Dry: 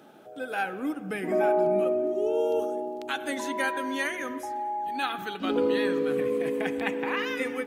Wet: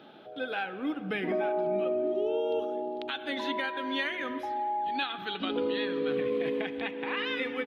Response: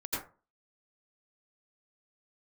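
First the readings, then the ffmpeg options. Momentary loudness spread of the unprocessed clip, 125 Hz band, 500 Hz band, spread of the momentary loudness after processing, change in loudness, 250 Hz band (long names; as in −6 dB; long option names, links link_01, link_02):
9 LU, −3.0 dB, −4.0 dB, 5 LU, −3.0 dB, −3.5 dB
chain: -af "highshelf=frequency=5300:width_type=q:width=3:gain=-14,alimiter=limit=-21dB:level=0:latency=1:release=399,aresample=32000,aresample=44100"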